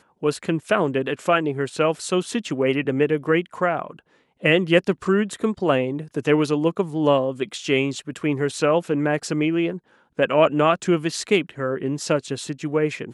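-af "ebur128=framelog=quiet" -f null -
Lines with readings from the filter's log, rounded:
Integrated loudness:
  I:         -22.1 LUFS
  Threshold: -32.2 LUFS
Loudness range:
  LRA:         1.5 LU
  Threshold: -42.0 LUFS
  LRA low:   -22.8 LUFS
  LRA high:  -21.3 LUFS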